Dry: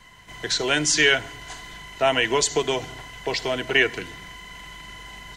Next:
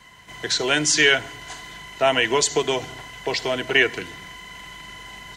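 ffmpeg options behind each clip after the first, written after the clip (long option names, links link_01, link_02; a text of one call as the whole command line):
ffmpeg -i in.wav -af "highpass=frequency=82:poles=1,volume=1.5dB" out.wav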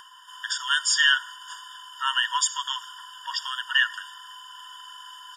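ffmpeg -i in.wav -af "aeval=exprs='0.596*(cos(1*acos(clip(val(0)/0.596,-1,1)))-cos(1*PI/2))+0.00841*(cos(2*acos(clip(val(0)/0.596,-1,1)))-cos(2*PI/2))':channel_layout=same,acompressor=mode=upward:threshold=-40dB:ratio=2.5,afftfilt=real='re*eq(mod(floor(b*sr/1024/930),2),1)':imag='im*eq(mod(floor(b*sr/1024/930),2),1)':win_size=1024:overlap=0.75" out.wav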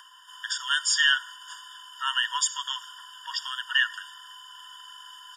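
ffmpeg -i in.wav -af "highpass=1000,volume=-1.5dB" out.wav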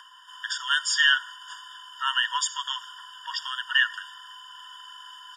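ffmpeg -i in.wav -af "highshelf=frequency=6500:gain=-10,volume=2.5dB" out.wav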